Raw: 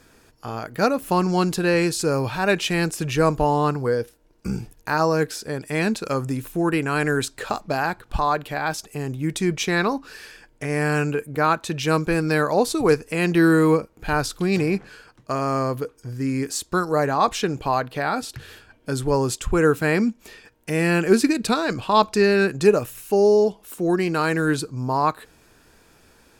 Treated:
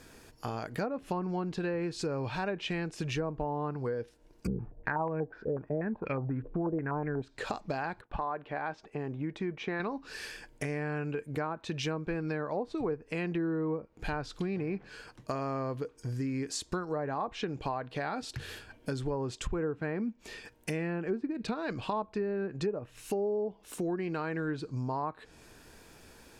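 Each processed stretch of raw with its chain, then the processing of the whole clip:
0:04.47–0:07.22: low-shelf EQ 220 Hz +7.5 dB + low-pass on a step sequencer 8.2 Hz 490–2,300 Hz
0:08.01–0:09.80: downward expander −47 dBFS + low-pass filter 1,800 Hz + low-shelf EQ 160 Hz −11 dB
whole clip: treble cut that deepens with the level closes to 1,100 Hz, closed at −14 dBFS; parametric band 1,300 Hz −3.5 dB 0.38 octaves; downward compressor 4 to 1, threshold −33 dBFS

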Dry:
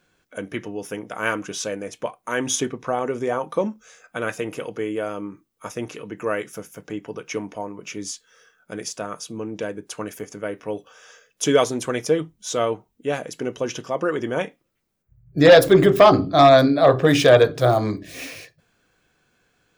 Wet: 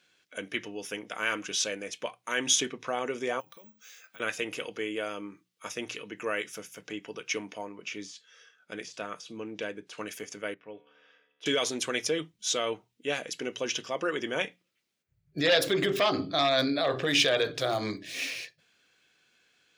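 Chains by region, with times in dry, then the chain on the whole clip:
0:03.40–0:04.20: parametric band 400 Hz −5 dB 2.4 octaves + bad sample-rate conversion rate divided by 2×, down none, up zero stuff + downward compressor 4 to 1, threshold −43 dBFS
0:07.68–0:09.98: de-essing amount 90% + high-shelf EQ 8,200 Hz −10.5 dB
0:10.54–0:11.46: high-frequency loss of the air 410 metres + tuned comb filter 73 Hz, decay 1.8 s
whole clip: mains-hum notches 60/120/180 Hz; brickwall limiter −12 dBFS; meter weighting curve D; level −7.5 dB

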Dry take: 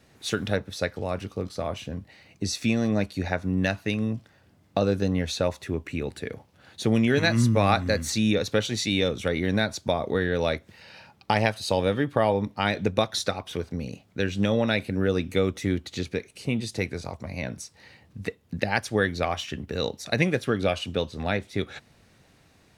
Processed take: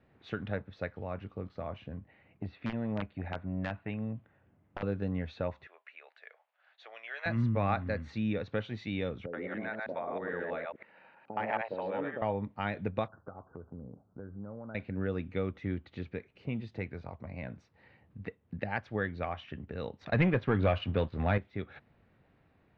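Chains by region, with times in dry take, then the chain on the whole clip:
0:01.98–0:04.83: low-pass filter 3,400 Hz 24 dB per octave + wrap-around overflow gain 13 dB + saturating transformer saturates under 280 Hz
0:05.67–0:07.26: elliptic high-pass filter 650 Hz, stop band 80 dB + parametric band 820 Hz −6.5 dB 1.2 octaves
0:09.26–0:12.22: delay that plays each chunk backwards 107 ms, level −0.5 dB + band-pass filter 320–2,300 Hz + multiband delay without the direct sound lows, highs 70 ms, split 560 Hz
0:13.08–0:14.75: Butterworth low-pass 1,500 Hz 96 dB per octave + downward compressor 2.5 to 1, threshold −36 dBFS
0:20.01–0:21.38: low-pass filter 7,200 Hz + parametric band 97 Hz +5.5 dB 0.36 octaves + leveller curve on the samples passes 2
whole clip: Bessel low-pass filter 1,900 Hz, order 4; dynamic equaliser 380 Hz, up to −4 dB, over −38 dBFS, Q 1; level −7 dB

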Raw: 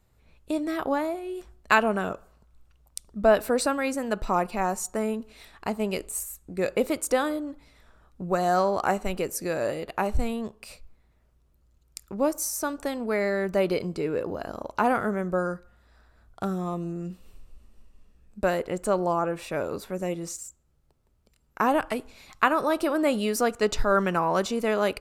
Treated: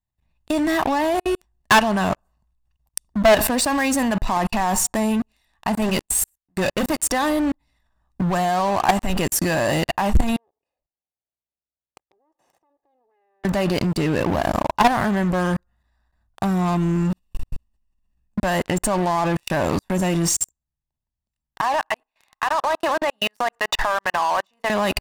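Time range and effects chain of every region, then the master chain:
0:05.82–0:07.00: mains-hum notches 50/100/150/200/250 Hz + leveller curve on the samples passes 3 + expander for the loud parts 2.5 to 1, over −34 dBFS
0:10.36–0:13.45: lower of the sound and its delayed copy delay 2.4 ms + resonant band-pass 540 Hz, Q 2.7 + downward compressor 2.5 to 1, threshold −41 dBFS
0:21.61–0:24.70: three-way crossover with the lows and the highs turned down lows −24 dB, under 500 Hz, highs −15 dB, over 3,000 Hz + hum removal 92.58 Hz, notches 5 + downward compressor 5 to 1, threshold −31 dBFS
whole clip: comb filter 1.1 ms, depth 70%; output level in coarse steps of 19 dB; leveller curve on the samples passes 5

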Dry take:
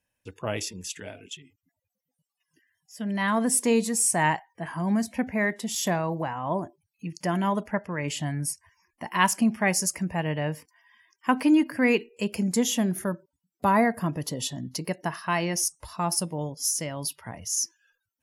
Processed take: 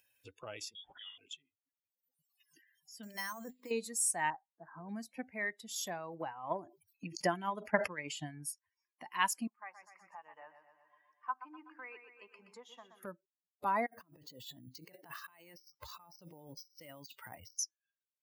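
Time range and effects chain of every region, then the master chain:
0:00.75–0:01.18: mu-law and A-law mismatch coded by mu + voice inversion scrambler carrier 3,500 Hz + high-shelf EQ 2,000 Hz −8.5 dB
0:03.03–0:03.71: mains-hum notches 50/100/150/200/250/300/350/400/450 Hz + compressor whose output falls as the input rises −28 dBFS + bad sample-rate conversion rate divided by 6×, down filtered, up hold
0:04.30–0:04.89: Chebyshev low-pass filter 1,500 Hz, order 4 + amplitude modulation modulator 280 Hz, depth 15%
0:06.13–0:08.44: transient designer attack +11 dB, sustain +1 dB + level that may fall only so fast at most 110 dB per second
0:09.47–0:13.03: resonant band-pass 1,100 Hz, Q 3.1 + repeating echo 124 ms, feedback 51%, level −8 dB
0:13.86–0:17.59: compressor whose output falls as the input rises −39 dBFS + bad sample-rate conversion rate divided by 4×, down filtered, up hold
whole clip: spectral dynamics exaggerated over time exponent 1.5; high-pass filter 530 Hz 6 dB per octave; upward compression, threshold −36 dBFS; level −7 dB

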